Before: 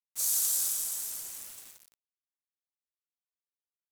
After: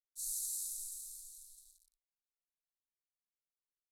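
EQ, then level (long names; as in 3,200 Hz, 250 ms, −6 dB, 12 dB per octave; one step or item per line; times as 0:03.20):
inverse Chebyshev band-stop filter 150–2,000 Hz, stop band 80 dB
low-pass with resonance 4,000 Hz, resonance Q 6.7
+10.0 dB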